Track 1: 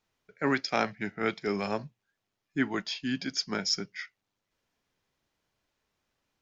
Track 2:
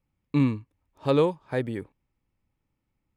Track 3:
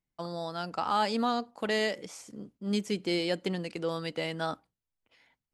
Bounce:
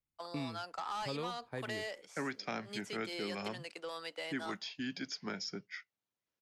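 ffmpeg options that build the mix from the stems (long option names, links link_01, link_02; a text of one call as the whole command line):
ffmpeg -i stem1.wav -i stem2.wav -i stem3.wav -filter_complex "[0:a]highpass=93,adelay=1750,volume=-4.5dB[link_01];[1:a]volume=-11dB[link_02];[2:a]highpass=640,asoftclip=type=tanh:threshold=-26dB,volume=-2.5dB[link_03];[link_01][link_02][link_03]amix=inputs=3:normalize=0,agate=range=-7dB:threshold=-47dB:ratio=16:detection=peak,acrossover=split=280|1200|5800[link_04][link_05][link_06][link_07];[link_04]acompressor=threshold=-44dB:ratio=4[link_08];[link_05]acompressor=threshold=-42dB:ratio=4[link_09];[link_06]acompressor=threshold=-42dB:ratio=4[link_10];[link_07]acompressor=threshold=-57dB:ratio=4[link_11];[link_08][link_09][link_10][link_11]amix=inputs=4:normalize=0" out.wav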